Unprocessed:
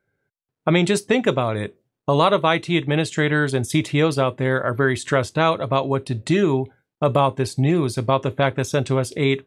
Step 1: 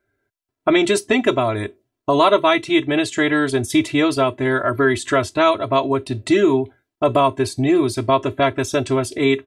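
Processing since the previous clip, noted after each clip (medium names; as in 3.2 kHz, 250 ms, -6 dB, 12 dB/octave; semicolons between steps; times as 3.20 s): comb 3 ms, depth 93%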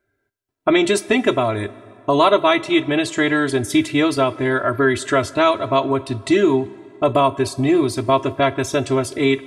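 plate-style reverb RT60 2.5 s, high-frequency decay 0.7×, DRR 18 dB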